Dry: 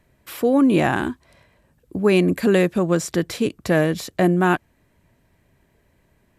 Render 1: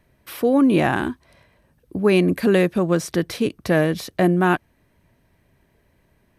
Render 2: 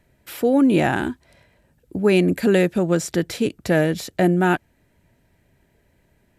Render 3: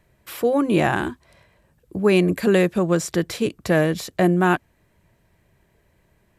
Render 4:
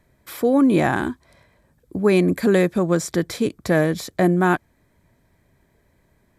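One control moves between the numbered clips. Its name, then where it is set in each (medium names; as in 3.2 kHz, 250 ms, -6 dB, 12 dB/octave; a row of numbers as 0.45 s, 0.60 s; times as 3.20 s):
band-stop, frequency: 7.3 kHz, 1.1 kHz, 260 Hz, 2.8 kHz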